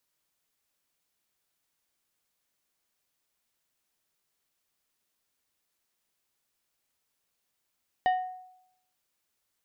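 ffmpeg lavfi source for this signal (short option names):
-f lavfi -i "aevalsrc='0.106*pow(10,-3*t/0.79)*sin(2*PI*739*t)+0.0355*pow(10,-3*t/0.416)*sin(2*PI*1847.5*t)+0.0119*pow(10,-3*t/0.299)*sin(2*PI*2956*t)+0.00398*pow(10,-3*t/0.256)*sin(2*PI*3695*t)+0.00133*pow(10,-3*t/0.213)*sin(2*PI*4803.5*t)':d=0.89:s=44100"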